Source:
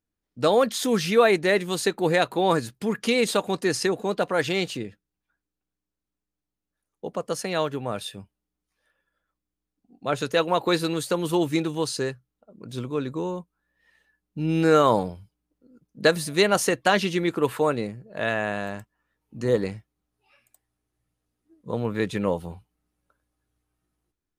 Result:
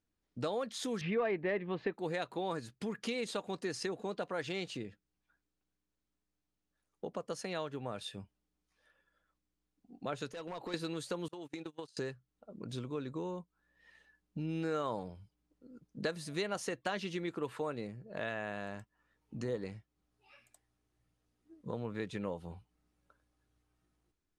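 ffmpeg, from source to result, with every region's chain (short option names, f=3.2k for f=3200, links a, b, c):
-filter_complex "[0:a]asettb=1/sr,asplit=3[a][b][c];[a]atrim=end=1.014[d];[b]atrim=start=1.01:end=1.94,asetpts=PTS-STARTPTS,afade=t=in:d=0.004:c=qsin,afade=t=out:st=0.926:d=0.004:c=qsin,lowpass=f=2.4k:w=0.5412,lowpass=f=2.4k:w=1.3066,bandreject=f=1.4k:w=6.6,acontrast=72[e];[c]atrim=start=1.936[f];[d][e]acrossfade=d=0.004:c1=hsin:c2=qsin[g];[g][f]acrossfade=d=0.004:c1=qsin:c2=hsin,asettb=1/sr,asplit=3[h][i][j];[h]atrim=end=10.304[k];[i]atrim=start=10.3:end=10.74,asetpts=PTS-STARTPTS,afade=t=in:d=0.004:c=qsin,afade=t=out:st=0.436:d=0.004:c=qsin,acompressor=threshold=-35dB:ratio=3:attack=3.2:release=140:knee=1:detection=peak,volume=31.5dB,asoftclip=hard,volume=-31.5dB[l];[j]atrim=start=10.736[m];[k][l]acrossfade=d=0.004:c1=hsin:c2=qsin[n];[n][m]acrossfade=d=0.004:c1=qsin:c2=hsin,asettb=1/sr,asplit=3[o][p][q];[o]atrim=end=11.284[r];[p]atrim=start=11.28:end=11.97,asetpts=PTS-STARTPTS,afade=t=in:d=0.004:c=qsin,afade=t=out:st=0.686:d=0.004:c=qsin,agate=range=-32dB:threshold=-27dB:ratio=16:release=100:detection=peak,highpass=f=260:p=1,acompressor=threshold=-33dB:ratio=16:attack=3.2:release=140:knee=1:detection=peak[s];[q]atrim=start=11.966[t];[r][s]acrossfade=d=0.004:c1=hsin:c2=qsin[u];[u][t]acrossfade=d=0.004:c1=qsin:c2=hsin,lowpass=8.1k,acompressor=threshold=-42dB:ratio=2.5"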